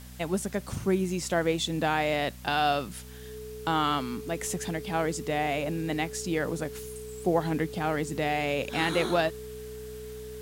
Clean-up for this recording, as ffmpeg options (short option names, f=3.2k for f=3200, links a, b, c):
-af "adeclick=t=4,bandreject=f=62.3:t=h:w=4,bandreject=f=124.6:t=h:w=4,bandreject=f=186.9:t=h:w=4,bandreject=f=249.2:t=h:w=4,bandreject=f=430:w=30,afwtdn=0.0025"